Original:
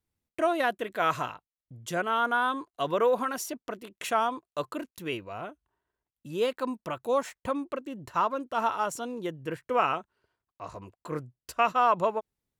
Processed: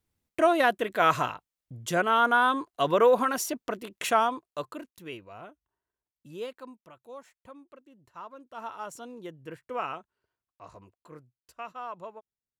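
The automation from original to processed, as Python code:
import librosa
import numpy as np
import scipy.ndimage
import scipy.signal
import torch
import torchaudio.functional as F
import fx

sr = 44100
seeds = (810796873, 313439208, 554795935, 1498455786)

y = fx.gain(x, sr, db=fx.line((4.09, 4.0), (4.95, -7.0), (6.3, -7.0), (6.92, -18.0), (8.12, -18.0), (8.97, -7.5), (10.78, -7.5), (11.23, -15.5)))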